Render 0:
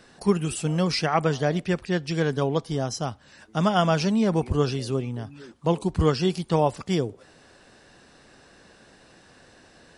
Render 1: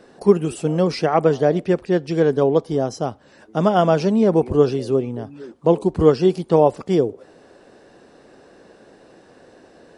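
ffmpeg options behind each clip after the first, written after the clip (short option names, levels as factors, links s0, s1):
-af "equalizer=f=430:t=o:w=2.4:g=14,volume=0.631"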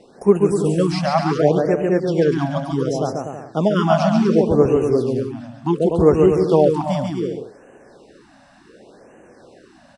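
-af "aecho=1:1:140|245|323.8|382.8|427.1:0.631|0.398|0.251|0.158|0.1,afftfilt=real='re*(1-between(b*sr/1024,370*pow(4300/370,0.5+0.5*sin(2*PI*0.68*pts/sr))/1.41,370*pow(4300/370,0.5+0.5*sin(2*PI*0.68*pts/sr))*1.41))':imag='im*(1-between(b*sr/1024,370*pow(4300/370,0.5+0.5*sin(2*PI*0.68*pts/sr))/1.41,370*pow(4300/370,0.5+0.5*sin(2*PI*0.68*pts/sr))*1.41))':win_size=1024:overlap=0.75"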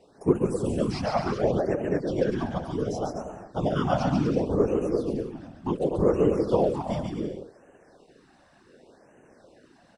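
-af "afftfilt=real='hypot(re,im)*cos(2*PI*random(0))':imag='hypot(re,im)*sin(2*PI*random(1))':win_size=512:overlap=0.75,volume=0.75"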